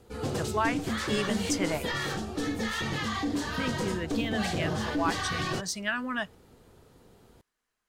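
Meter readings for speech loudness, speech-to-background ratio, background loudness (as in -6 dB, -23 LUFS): -33.0 LUFS, -1.5 dB, -31.5 LUFS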